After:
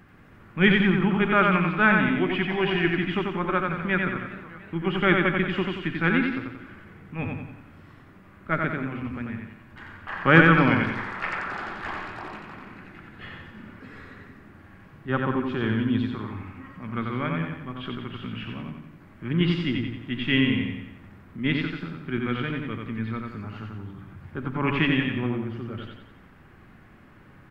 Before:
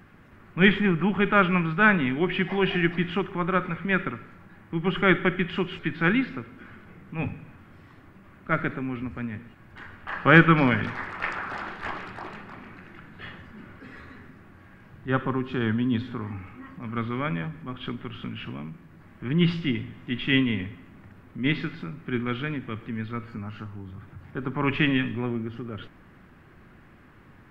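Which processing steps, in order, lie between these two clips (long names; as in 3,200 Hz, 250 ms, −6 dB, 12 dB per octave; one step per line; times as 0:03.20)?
repeating echo 90 ms, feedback 47%, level −3.5 dB
0:03.48–0:05.70: feedback echo with a swinging delay time 301 ms, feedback 61%, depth 129 cents, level −17 dB
level −1 dB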